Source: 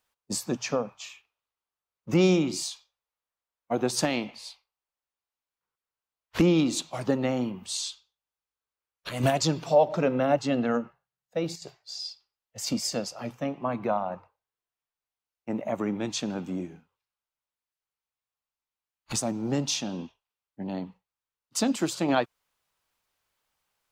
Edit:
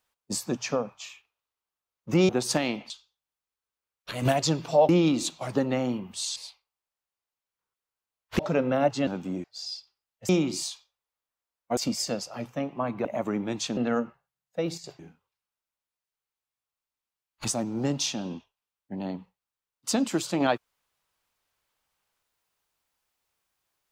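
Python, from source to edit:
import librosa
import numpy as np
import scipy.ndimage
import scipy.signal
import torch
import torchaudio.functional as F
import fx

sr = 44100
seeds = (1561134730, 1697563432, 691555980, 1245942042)

y = fx.edit(x, sr, fx.move(start_s=2.29, length_s=1.48, to_s=12.62),
    fx.swap(start_s=4.38, length_s=2.03, other_s=7.88, other_length_s=1.99),
    fx.swap(start_s=10.55, length_s=1.22, other_s=16.3, other_length_s=0.37),
    fx.cut(start_s=13.9, length_s=1.68), tone=tone)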